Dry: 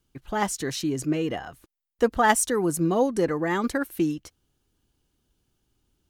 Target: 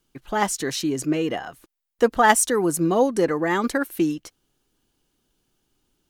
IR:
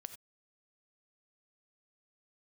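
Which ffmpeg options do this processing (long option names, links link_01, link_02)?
-af "equalizer=frequency=67:width=0.73:gain=-12,volume=4dB"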